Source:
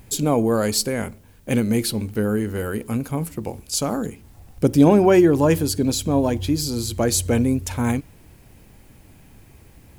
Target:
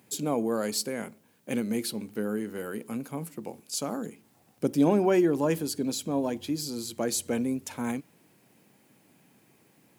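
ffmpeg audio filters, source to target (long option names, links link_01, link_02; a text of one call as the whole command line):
ffmpeg -i in.wav -af "highpass=frequency=160:width=0.5412,highpass=frequency=160:width=1.3066,volume=-8.5dB" out.wav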